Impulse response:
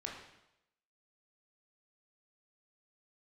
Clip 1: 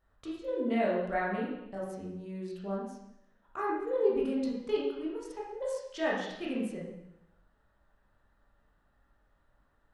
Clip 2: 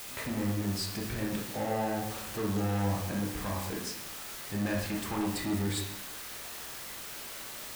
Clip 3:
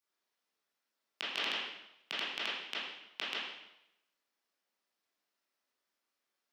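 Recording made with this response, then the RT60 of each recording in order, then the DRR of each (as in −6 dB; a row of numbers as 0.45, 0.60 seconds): 2; 0.85, 0.85, 0.85 seconds; −5.5, −1.5, −10.5 decibels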